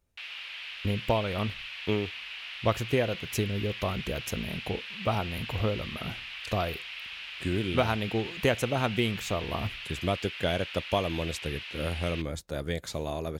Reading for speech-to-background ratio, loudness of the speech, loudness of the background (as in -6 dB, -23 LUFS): 6.5 dB, -31.5 LUFS, -38.0 LUFS